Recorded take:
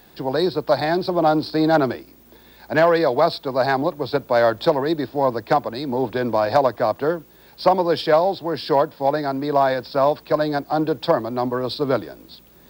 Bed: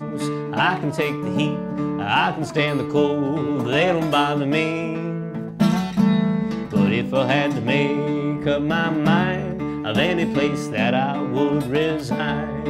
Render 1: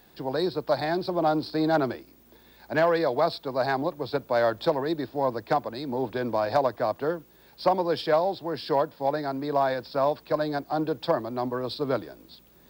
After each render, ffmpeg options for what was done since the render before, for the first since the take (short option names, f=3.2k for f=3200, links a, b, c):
-af "volume=-6.5dB"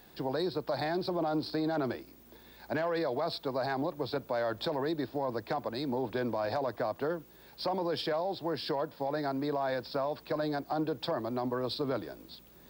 -af "alimiter=limit=-21dB:level=0:latency=1:release=11,acompressor=threshold=-31dB:ratio=2"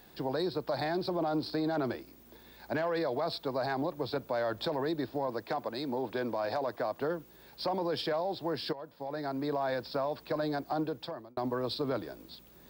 -filter_complex "[0:a]asettb=1/sr,asplit=3[a][b][c];[a]atrim=end=5.274[d];[b]atrim=start=5.27:end=6.97,asetpts=PTS-STARTPTS,afade=t=in:d=0.004:c=qsin,afade=t=out:st=1.696:d=0.004:c=qsin,lowshelf=f=120:g=-10.5[e];[c]atrim=start=6.966[f];[d][e]acrossfade=d=0.004:c1=hsin:c2=qsin[g];[g][f]acrossfade=d=0.004:c1=qsin:c2=hsin,asplit=3[h][i][j];[h]atrim=end=8.73,asetpts=PTS-STARTPTS,afade=t=out:st=8.726:d=0.004:c=hsin:silence=0.199526[k];[i]atrim=start=8.73:end=11.37,asetpts=PTS-STARTPTS,afade=t=in:d=0.79:silence=0.199526,afade=t=out:st=2.04:d=0.6[l];[j]atrim=start=11.37,asetpts=PTS-STARTPTS,afade=t=in:d=0.004:c=hsin[m];[k][l][m]concat=n=3:v=0:a=1"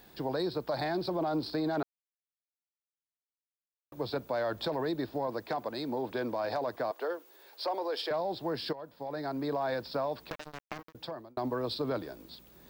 -filter_complex "[0:a]asettb=1/sr,asplit=3[a][b][c];[a]atrim=end=6.914[d];[b]atrim=start=6.91:end=8.11,asetpts=PTS-STARTPTS,afade=t=in:d=0.004:c=qsin,afade=t=out:st=1.196:d=0.004:c=qsin,highpass=f=380:w=0.5412,highpass=f=380:w=1.3066[e];[c]atrim=start=8.106[f];[d][e]acrossfade=d=0.004:c1=hsin:c2=qsin[g];[g][f]acrossfade=d=0.004:c1=qsin:c2=hsin,asettb=1/sr,asplit=3[h][i][j];[h]atrim=end=10.304[k];[i]atrim=start=10.3:end=10.95,asetpts=PTS-STARTPTS,afade=t=in:d=0.004:c=qsin,afade=t=out:st=0.646:d=0.004:c=qsin,acrusher=bits=3:mix=0:aa=0.5[l];[j]atrim=start=10.946[m];[k][l]acrossfade=d=0.004:c1=hsin:c2=qsin[n];[n][m]acrossfade=d=0.004:c1=qsin:c2=hsin,asplit=3[o][p][q];[o]atrim=end=1.83,asetpts=PTS-STARTPTS,afade=t=out:st=1.826:d=0.004:c=hsin[r];[p]atrim=start=1.83:end=3.92,asetpts=PTS-STARTPTS,volume=0[s];[q]atrim=start=3.92,asetpts=PTS-STARTPTS,afade=t=in:d=0.004:c=hsin[t];[r][s][t]concat=n=3:v=0:a=1"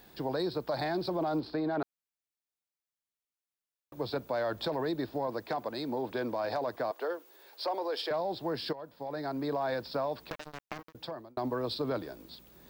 -filter_complex "[0:a]asettb=1/sr,asplit=3[a][b][c];[a]atrim=end=1.404[d];[b]atrim=start=1.4:end=1.82,asetpts=PTS-STARTPTS,afade=t=in:d=0.004:c=qsin,afade=t=out:st=0.416:d=0.004:c=qsin,bass=f=250:g=-2,treble=f=4k:g=-14[e];[c]atrim=start=1.816[f];[d][e]acrossfade=d=0.004:c1=hsin:c2=qsin[g];[g][f]acrossfade=d=0.004:c1=qsin:c2=hsin"